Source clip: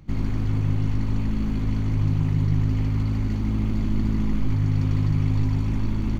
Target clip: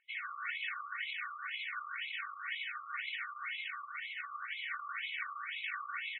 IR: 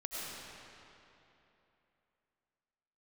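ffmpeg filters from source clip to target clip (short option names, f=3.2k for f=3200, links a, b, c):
-filter_complex "[0:a]highpass=f=320:w=0.5412,highpass=f=320:w=1.3066,alimiter=level_in=9dB:limit=-24dB:level=0:latency=1:release=32,volume=-9dB,asuperstop=centerf=730:order=20:qfactor=1.1,asplit=2[a][b];[1:a]atrim=start_sample=2205[c];[b][c]afir=irnorm=-1:irlink=0,volume=-2.5dB[d];[a][d]amix=inputs=2:normalize=0,afftdn=nr=18:nf=-53,aecho=1:1:2.7:0.92,afftfilt=real='re*between(b*sr/1024,960*pow(2900/960,0.5+0.5*sin(2*PI*2*pts/sr))/1.41,960*pow(2900/960,0.5+0.5*sin(2*PI*2*pts/sr))*1.41)':imag='im*between(b*sr/1024,960*pow(2900/960,0.5+0.5*sin(2*PI*2*pts/sr))/1.41,960*pow(2900/960,0.5+0.5*sin(2*PI*2*pts/sr))*1.41)':win_size=1024:overlap=0.75,volume=6dB"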